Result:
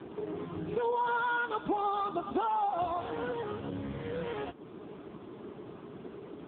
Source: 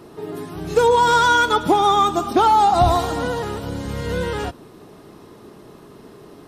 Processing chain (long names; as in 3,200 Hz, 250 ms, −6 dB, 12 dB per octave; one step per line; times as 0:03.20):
dynamic equaliser 2,600 Hz, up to +5 dB, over −46 dBFS, Q 5.4
downward compressor 2.5 to 1, threshold −35 dBFS, peak gain reduction 16 dB
AMR narrowband 5.15 kbit/s 8,000 Hz